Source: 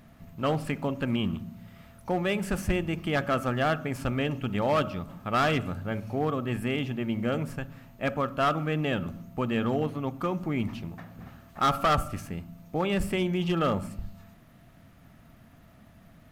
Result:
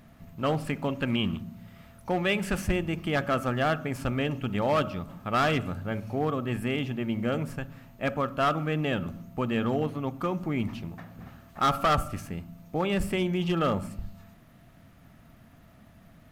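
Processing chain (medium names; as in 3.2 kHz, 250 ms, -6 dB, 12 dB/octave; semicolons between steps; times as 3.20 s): 0.79–2.67 s: dynamic bell 2.7 kHz, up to +5 dB, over -45 dBFS, Q 0.79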